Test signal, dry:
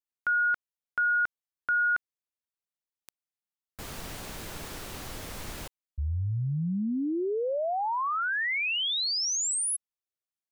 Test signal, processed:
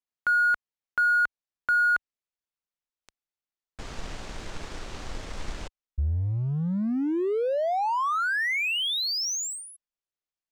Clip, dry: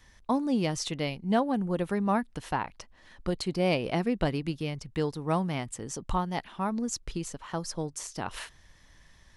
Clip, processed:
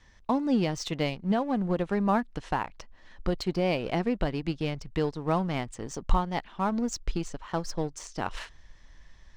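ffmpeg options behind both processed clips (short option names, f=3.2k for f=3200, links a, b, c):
-filter_complex "[0:a]lowpass=f=7.5k:w=0.5412,lowpass=f=7.5k:w=1.3066,highshelf=f=3k:g=-3.5,asplit=2[a][b];[b]aeval=exprs='sgn(val(0))*max(abs(val(0))-0.0112,0)':c=same,volume=-3dB[c];[a][c]amix=inputs=2:normalize=0,alimiter=limit=-16dB:level=0:latency=1:release=350,asubboost=boost=2.5:cutoff=58"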